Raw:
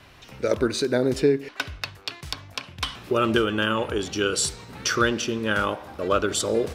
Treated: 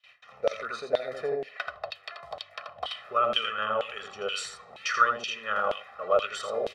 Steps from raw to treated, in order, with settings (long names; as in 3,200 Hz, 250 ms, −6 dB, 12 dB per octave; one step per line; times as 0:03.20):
0:00.99–0:03.11: graphic EQ with 15 bands 630 Hz +10 dB, 2,500 Hz −5 dB, 6,300 Hz −5 dB
single-tap delay 83 ms −5 dB
noise gate with hold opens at −39 dBFS
comb filter 1.6 ms, depth 94%
auto-filter band-pass saw down 2.1 Hz 640–3,400 Hz